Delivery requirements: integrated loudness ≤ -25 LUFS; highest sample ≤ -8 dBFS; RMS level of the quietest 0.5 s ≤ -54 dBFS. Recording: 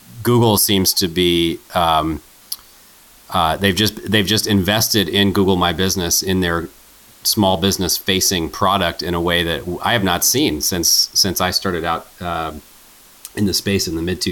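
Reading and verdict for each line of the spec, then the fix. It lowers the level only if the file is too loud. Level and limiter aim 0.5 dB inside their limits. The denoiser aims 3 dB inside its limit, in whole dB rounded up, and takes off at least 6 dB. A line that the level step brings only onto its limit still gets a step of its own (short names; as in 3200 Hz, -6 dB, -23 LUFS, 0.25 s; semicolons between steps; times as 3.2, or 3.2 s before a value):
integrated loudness -16.5 LUFS: fail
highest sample -3.5 dBFS: fail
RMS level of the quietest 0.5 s -46 dBFS: fail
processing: gain -9 dB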